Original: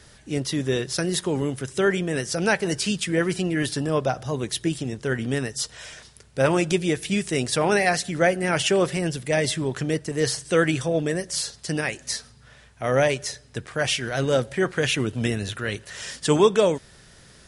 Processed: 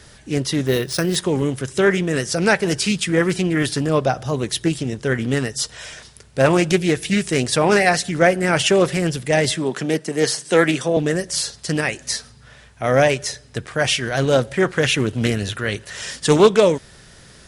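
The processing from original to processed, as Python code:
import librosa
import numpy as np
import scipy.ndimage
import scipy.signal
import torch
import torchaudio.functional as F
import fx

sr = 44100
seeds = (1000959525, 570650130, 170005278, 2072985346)

y = fx.resample_bad(x, sr, factor=3, down='filtered', up='hold', at=(0.66, 1.16))
y = fx.highpass(y, sr, hz=170.0, slope=24, at=(9.56, 10.97))
y = fx.doppler_dist(y, sr, depth_ms=0.22)
y = F.gain(torch.from_numpy(y), 5.0).numpy()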